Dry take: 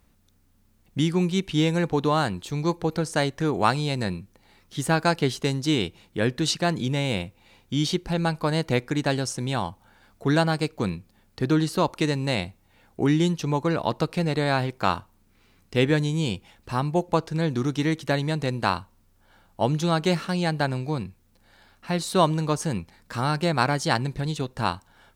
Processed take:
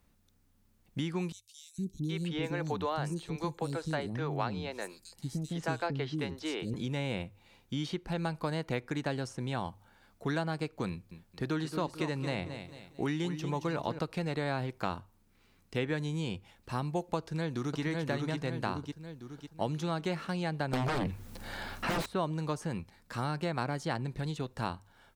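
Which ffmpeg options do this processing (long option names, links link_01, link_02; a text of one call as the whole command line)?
ffmpeg -i in.wav -filter_complex "[0:a]asettb=1/sr,asplit=3[link_01][link_02][link_03];[link_01]atrim=end=1.324[link_04];[link_02]atrim=start=1.32:end=6.74,asetpts=PTS-STARTPTS,afade=type=in:duration=0.004:curve=qsin,afade=type=out:start_time=5.416:duration=0.004:curve=qsin,acrossover=split=330|5200[link_05][link_06][link_07];[link_05]adelay=460[link_08];[link_06]adelay=770[link_09];[link_08][link_09][link_07]amix=inputs=3:normalize=0,atrim=end_sample=239022[link_10];[link_03]atrim=start=6.736[link_11];[link_04][link_10]acrossfade=duration=0.004:curve1=hsin:curve2=qsin[link_12];[link_12][link_11]acrossfade=duration=0.004:curve1=qsin:curve2=hsin,asettb=1/sr,asplit=3[link_13][link_14][link_15];[link_13]atrim=end=10.894[link_16];[link_14]atrim=start=10.89:end=13.99,asetpts=PTS-STARTPTS,afade=type=in:duration=0.004:curve=qsin,afade=type=out:start_time=3.096:duration=0.004:curve=qsin,aecho=1:1:223|446|669|892:0.266|0.101|0.0384|0.0146,atrim=end_sample=136710[link_17];[link_15]atrim=start=13.986[link_18];[link_16][link_17]acrossfade=duration=0.004:curve1=hsin:curve2=qsin[link_19];[link_19][link_18]acrossfade=duration=0.004:curve1=qsin:curve2=hsin,asplit=2[link_20][link_21];[link_21]afade=type=in:start_time=17.18:duration=0.01,afade=type=out:start_time=17.81:duration=0.01,aecho=0:1:550|1100|1650|2200|2750|3300:0.891251|0.401063|0.180478|0.0812152|0.0365469|0.0164461[link_22];[link_20][link_22]amix=inputs=2:normalize=0,asettb=1/sr,asplit=3[link_23][link_24][link_25];[link_23]atrim=end=20.734[link_26];[link_24]atrim=start=20.73:end=22.06,asetpts=PTS-STARTPTS,afade=type=in:duration=0.004:curve=qsin,afade=type=out:start_time=1.326:duration=0.004:curve=qsin,aeval=exprs='0.188*sin(PI/2*7.94*val(0)/0.188)':channel_layout=same[link_27];[link_25]atrim=start=22.056[link_28];[link_26][link_27]acrossfade=duration=0.004:curve1=hsin:curve2=qsin[link_29];[link_29][link_28]acrossfade=duration=0.004:curve1=qsin:curve2=hsin,bandreject=frequency=50:width_type=h:width=6,bandreject=frequency=100:width_type=h:width=6,acrossover=split=630|2700[link_30][link_31][link_32];[link_30]acompressor=threshold=-26dB:ratio=4[link_33];[link_31]acompressor=threshold=-29dB:ratio=4[link_34];[link_32]acompressor=threshold=-43dB:ratio=4[link_35];[link_33][link_34][link_35]amix=inputs=3:normalize=0,volume=-6dB" out.wav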